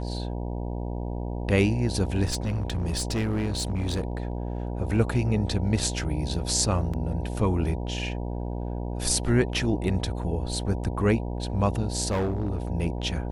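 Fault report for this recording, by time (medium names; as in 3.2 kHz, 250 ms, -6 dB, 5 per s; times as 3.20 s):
buzz 60 Hz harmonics 16 -31 dBFS
2.27–4.58 s: clipped -23 dBFS
6.93–6.94 s: dropout 5.8 ms
12.10–12.58 s: clipped -22.5 dBFS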